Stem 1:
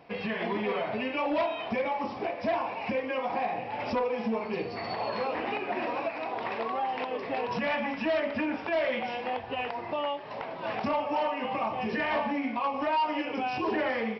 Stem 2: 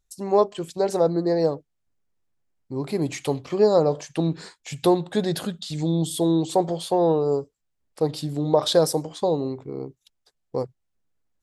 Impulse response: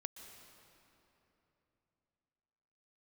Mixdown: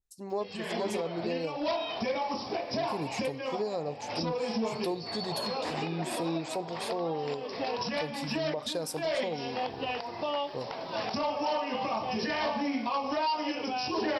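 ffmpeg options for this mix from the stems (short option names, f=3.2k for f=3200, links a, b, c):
-filter_complex "[0:a]highshelf=f=3.5k:t=q:w=1.5:g=13.5,adelay=300,volume=0.5dB[a];[1:a]adynamicequalizer=threshold=0.0178:dfrequency=2000:dqfactor=0.7:tfrequency=2000:tqfactor=0.7:attack=5:release=100:ratio=0.375:range=2.5:mode=boostabove:tftype=highshelf,volume=-11dB,asplit=2[b][c];[c]apad=whole_len=639214[d];[a][d]sidechaincompress=threshold=-33dB:ratio=5:attack=6.6:release=446[e];[e][b]amix=inputs=2:normalize=0,alimiter=limit=-22.5dB:level=0:latency=1:release=275"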